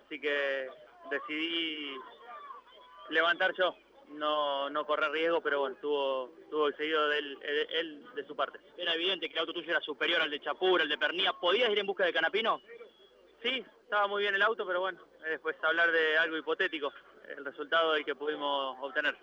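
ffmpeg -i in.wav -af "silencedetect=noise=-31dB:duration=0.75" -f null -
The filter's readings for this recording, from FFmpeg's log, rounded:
silence_start: 1.93
silence_end: 3.12 | silence_duration: 1.20
silence_start: 12.56
silence_end: 13.45 | silence_duration: 0.89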